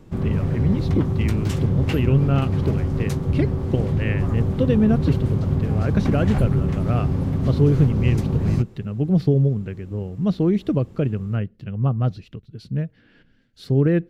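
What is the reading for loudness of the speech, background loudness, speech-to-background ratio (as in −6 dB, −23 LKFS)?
−23.5 LKFS, −23.0 LKFS, −0.5 dB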